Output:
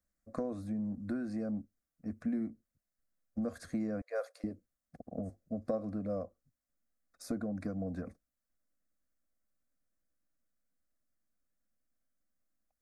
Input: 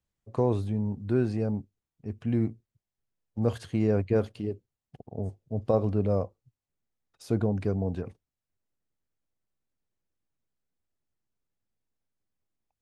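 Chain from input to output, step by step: 4.01–4.44 s: Chebyshev high-pass 490 Hz, order 5; compression 6:1, threshold -30 dBFS, peak gain reduction 11.5 dB; static phaser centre 600 Hz, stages 8; trim +2 dB

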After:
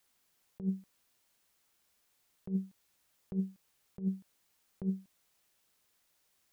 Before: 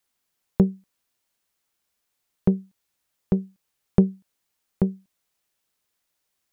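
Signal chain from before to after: compressor with a negative ratio -30 dBFS, ratio -1; trim -5 dB

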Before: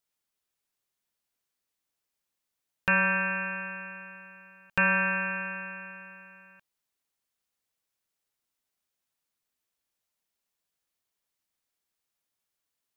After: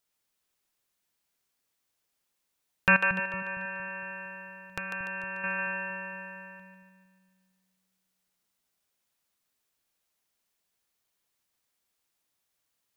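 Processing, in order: 2.96–5.44 s: compression 8:1, threshold -39 dBFS, peak gain reduction 18 dB; two-band feedback delay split 300 Hz, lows 230 ms, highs 147 ms, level -6 dB; trim +3.5 dB

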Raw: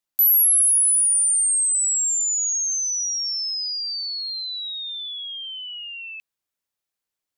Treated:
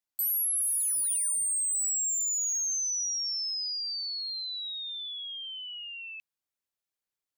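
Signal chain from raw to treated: hard clipper -21.5 dBFS, distortion -9 dB; trim -6 dB

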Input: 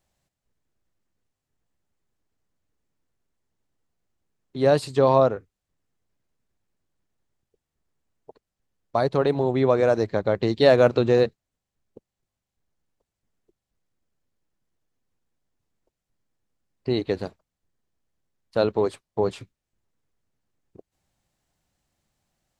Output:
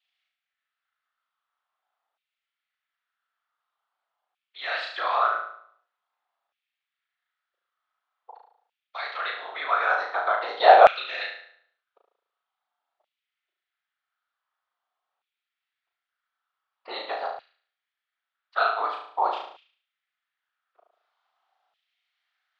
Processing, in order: whisper effect; cabinet simulation 360–4200 Hz, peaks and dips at 720 Hz +8 dB, 1.3 kHz +9 dB, 3.4 kHz +5 dB; on a send: flutter echo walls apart 6.2 m, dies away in 0.58 s; on the sum: LFO high-pass saw down 0.46 Hz 770–2600 Hz; trim -3 dB

